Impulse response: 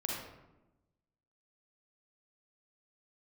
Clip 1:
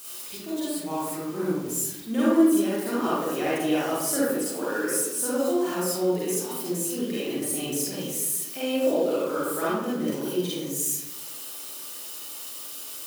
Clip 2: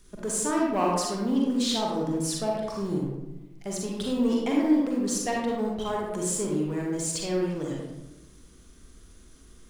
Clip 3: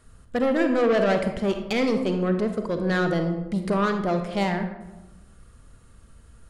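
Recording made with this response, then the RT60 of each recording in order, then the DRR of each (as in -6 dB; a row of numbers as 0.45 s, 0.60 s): 2; 1.0 s, 1.0 s, 1.0 s; -9.0 dB, -2.5 dB, 6.0 dB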